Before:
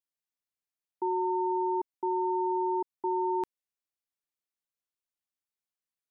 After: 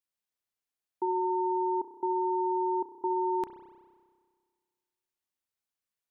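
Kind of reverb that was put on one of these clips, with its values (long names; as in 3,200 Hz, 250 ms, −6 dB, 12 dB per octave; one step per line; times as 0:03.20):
spring reverb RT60 1.7 s, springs 31 ms, chirp 20 ms, DRR 7 dB
level +1 dB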